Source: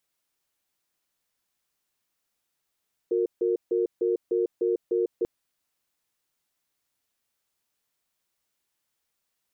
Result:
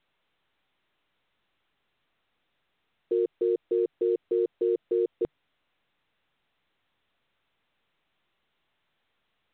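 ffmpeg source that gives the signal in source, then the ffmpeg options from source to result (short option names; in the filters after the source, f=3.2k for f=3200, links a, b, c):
-f lavfi -i "aevalsrc='0.0631*(sin(2*PI*361*t)+sin(2*PI*461*t))*clip(min(mod(t,0.3),0.15-mod(t,0.3))/0.005,0,1)':d=2.14:s=44100"
-af "equalizer=f=150:t=o:w=0.35:g=2.5" -ar 8000 -c:a pcm_mulaw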